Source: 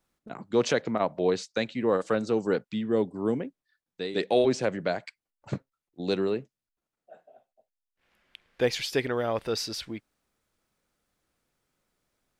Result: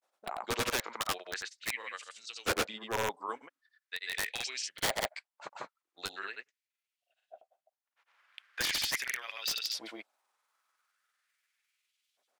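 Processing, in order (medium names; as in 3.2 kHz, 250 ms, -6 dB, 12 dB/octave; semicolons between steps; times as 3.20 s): LFO high-pass saw up 0.41 Hz 590–3300 Hz; integer overflow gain 22 dB; granulator 100 ms, grains 20 per s, spray 100 ms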